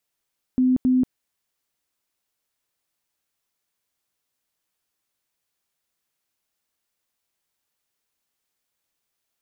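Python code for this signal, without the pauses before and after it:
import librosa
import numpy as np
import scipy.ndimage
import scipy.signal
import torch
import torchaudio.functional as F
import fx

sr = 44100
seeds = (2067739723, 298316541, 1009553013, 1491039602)

y = fx.tone_burst(sr, hz=255.0, cycles=47, every_s=0.27, bursts=2, level_db=-15.0)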